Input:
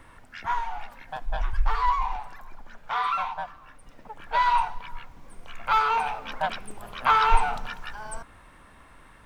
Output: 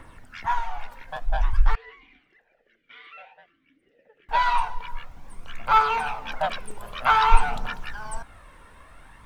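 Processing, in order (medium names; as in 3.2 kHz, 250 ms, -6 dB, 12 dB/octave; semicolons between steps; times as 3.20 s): phaser 0.52 Hz, delay 2.2 ms, feedback 40%; 1.75–4.29 s: talking filter e-i 1.3 Hz; trim +1 dB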